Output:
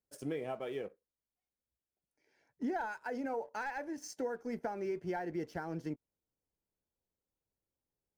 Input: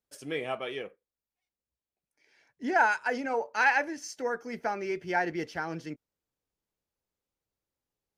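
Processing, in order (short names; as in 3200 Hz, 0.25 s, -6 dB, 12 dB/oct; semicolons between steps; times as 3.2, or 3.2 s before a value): high shelf 7800 Hz -5.5 dB; sample leveller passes 1; compressor 4:1, threshold -35 dBFS, peak gain reduction 15 dB; bell 3000 Hz -11.5 dB 2.5 oct; notch 1200 Hz, Q 15; gain +1 dB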